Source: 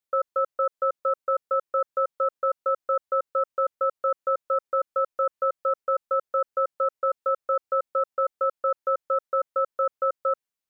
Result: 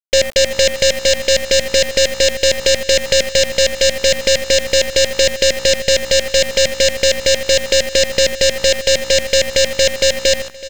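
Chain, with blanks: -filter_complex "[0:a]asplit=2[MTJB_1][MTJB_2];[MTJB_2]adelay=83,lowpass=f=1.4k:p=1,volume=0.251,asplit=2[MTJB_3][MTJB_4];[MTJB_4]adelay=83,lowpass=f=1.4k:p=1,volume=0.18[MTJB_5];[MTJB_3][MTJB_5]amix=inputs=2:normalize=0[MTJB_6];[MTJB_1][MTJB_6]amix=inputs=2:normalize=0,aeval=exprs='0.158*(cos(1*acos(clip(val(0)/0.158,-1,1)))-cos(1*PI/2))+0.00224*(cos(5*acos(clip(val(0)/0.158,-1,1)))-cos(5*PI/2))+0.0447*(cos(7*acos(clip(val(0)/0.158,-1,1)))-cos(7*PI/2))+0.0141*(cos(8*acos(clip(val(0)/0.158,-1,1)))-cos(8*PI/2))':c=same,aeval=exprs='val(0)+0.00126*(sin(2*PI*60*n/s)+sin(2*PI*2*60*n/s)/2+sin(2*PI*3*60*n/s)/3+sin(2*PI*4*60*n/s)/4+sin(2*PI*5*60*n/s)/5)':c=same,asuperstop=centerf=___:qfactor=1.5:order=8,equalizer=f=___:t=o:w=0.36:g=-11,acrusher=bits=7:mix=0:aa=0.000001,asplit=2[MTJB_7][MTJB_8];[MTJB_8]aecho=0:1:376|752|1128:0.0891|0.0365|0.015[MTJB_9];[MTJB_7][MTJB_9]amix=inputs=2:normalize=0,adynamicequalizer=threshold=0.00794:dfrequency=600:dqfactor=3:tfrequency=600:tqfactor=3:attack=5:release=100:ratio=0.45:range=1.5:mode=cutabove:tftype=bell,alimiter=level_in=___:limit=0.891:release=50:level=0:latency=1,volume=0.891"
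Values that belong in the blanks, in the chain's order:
1200, 760, 11.2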